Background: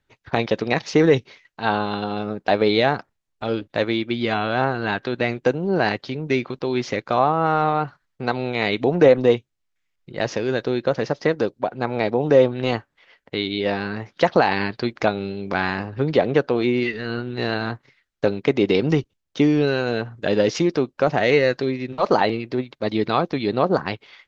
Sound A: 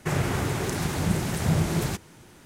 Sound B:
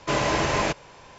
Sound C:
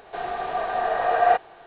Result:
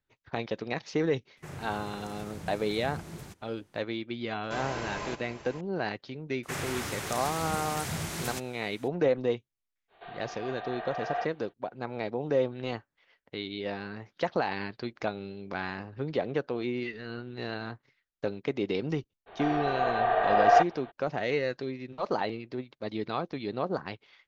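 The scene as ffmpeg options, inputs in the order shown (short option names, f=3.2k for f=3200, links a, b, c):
-filter_complex "[1:a]asplit=2[a][b];[3:a]asplit=2[c][d];[0:a]volume=-12dB[e];[2:a]aecho=1:1:531:0.266[f];[b]tiltshelf=f=820:g=-6[g];[c]highshelf=f=2.2k:g=11[h];[a]atrim=end=2.45,asetpts=PTS-STARTPTS,volume=-17dB,afade=t=in:d=0.004:c=hsin,afade=t=out:st=2.446:d=0.004:c=hsin,adelay=1370[i];[f]atrim=end=1.18,asetpts=PTS-STARTPTS,volume=-13.5dB,afade=t=in:d=0.004:c=hsin,afade=t=out:st=1.176:d=0.004:c=hsin,adelay=4430[j];[g]atrim=end=2.45,asetpts=PTS-STARTPTS,volume=-7.5dB,afade=t=in:d=0.004:c=hsin,afade=t=out:st=2.446:d=0.004:c=hsin,adelay=6430[k];[h]atrim=end=1.66,asetpts=PTS-STARTPTS,volume=-16dB,afade=t=in:d=0.05,afade=t=out:st=1.61:d=0.05,adelay=9880[l];[d]atrim=end=1.66,asetpts=PTS-STARTPTS,volume=-1.5dB,afade=t=in:d=0.02,afade=t=out:st=1.64:d=0.02,adelay=19260[m];[e][i][j][k][l][m]amix=inputs=6:normalize=0"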